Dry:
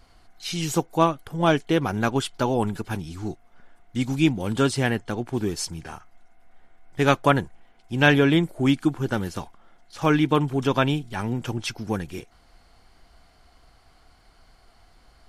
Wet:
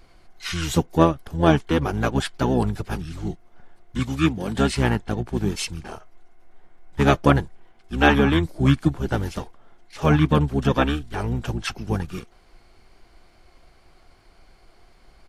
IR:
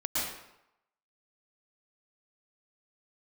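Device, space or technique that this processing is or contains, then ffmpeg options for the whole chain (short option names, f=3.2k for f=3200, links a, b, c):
octave pedal: -filter_complex "[0:a]asettb=1/sr,asplit=3[a][b][c];[a]atrim=end=3.994[d];[b]atrim=start=3.99:end=4.56,asetpts=PTS-STARTPTS,afade=t=in:d=0.004:c=qsin,afade=t=out:st=0.566:d=0.004:c=qsin,highpass=170[e];[c]atrim=start=4.556[f];[d][e]acrossfade=d=0.004:c1=hsin:c2=qsin[g];[g][f]acrossfade=d=0.004:c1=qsin:c2=hsin,asplit=2[h][i];[i]asetrate=22050,aresample=44100,atempo=2,volume=0dB[j];[h][j]amix=inputs=2:normalize=0,volume=-1dB"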